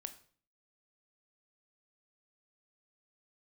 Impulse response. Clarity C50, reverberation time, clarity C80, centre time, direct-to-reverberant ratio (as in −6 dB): 13.5 dB, 0.45 s, 17.5 dB, 7 ms, 8.5 dB